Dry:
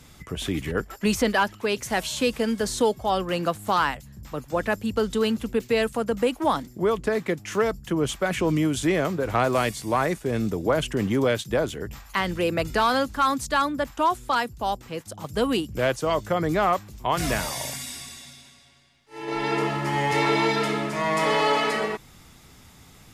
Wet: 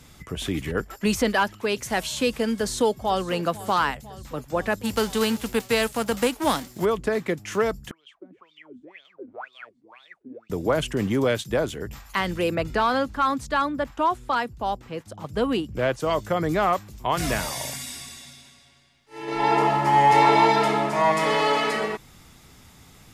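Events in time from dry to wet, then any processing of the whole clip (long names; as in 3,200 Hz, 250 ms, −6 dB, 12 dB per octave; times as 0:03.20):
0:02.52–0:03.22: delay throw 500 ms, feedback 70%, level −17.5 dB
0:04.83–0:06.84: spectral envelope flattened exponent 0.6
0:07.91–0:10.50: LFO wah 2 Hz 240–3,700 Hz, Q 22
0:12.55–0:16.00: high-shelf EQ 4,900 Hz −11.5 dB
0:19.39–0:21.12: parametric band 810 Hz +11.5 dB 0.78 octaves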